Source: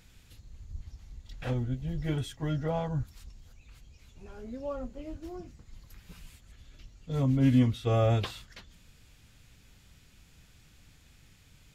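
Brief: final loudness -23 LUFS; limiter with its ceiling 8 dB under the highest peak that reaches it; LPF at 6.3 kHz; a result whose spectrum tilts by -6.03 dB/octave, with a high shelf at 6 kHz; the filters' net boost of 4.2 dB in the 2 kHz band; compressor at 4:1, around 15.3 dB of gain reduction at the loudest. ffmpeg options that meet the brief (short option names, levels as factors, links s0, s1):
-af "lowpass=6300,equalizer=f=2000:t=o:g=6,highshelf=f=6000:g=-6,acompressor=threshold=0.0141:ratio=4,volume=14.1,alimiter=limit=0.266:level=0:latency=1"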